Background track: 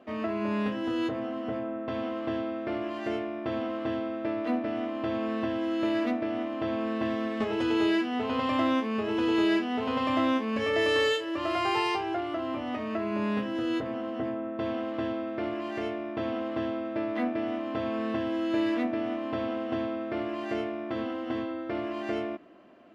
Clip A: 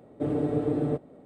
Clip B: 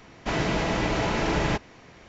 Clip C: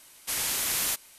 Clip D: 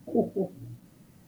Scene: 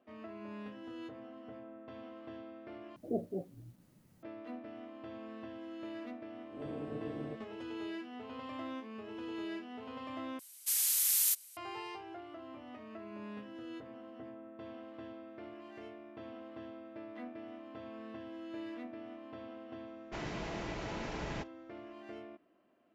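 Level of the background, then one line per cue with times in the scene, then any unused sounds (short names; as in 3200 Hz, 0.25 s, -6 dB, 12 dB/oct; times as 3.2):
background track -16.5 dB
2.96 replace with D -9.5 dB
6.39 add A -17 dB + spectral swells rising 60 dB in 0.36 s
10.39 replace with C -2.5 dB + differentiator
19.86 add B -15.5 dB + expander -37 dBFS, range -9 dB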